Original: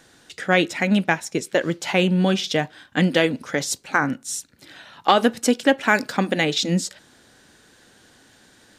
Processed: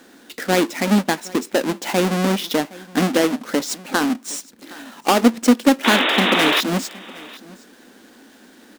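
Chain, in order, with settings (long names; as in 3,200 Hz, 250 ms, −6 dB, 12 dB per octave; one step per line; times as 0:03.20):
each half-wave held at its own peak
in parallel at −2 dB: downward compressor, threshold −28 dBFS, peak gain reduction 18.5 dB
on the sum: low shelf with overshoot 170 Hz −11 dB, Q 3
sound drawn into the spectrogram noise, 0:05.84–0:06.61, 280–3,800 Hz −13 dBFS
on a send: single-tap delay 766 ms −21.5 dB
on the sum: highs frequency-modulated by the lows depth 0.23 ms
level −5.5 dB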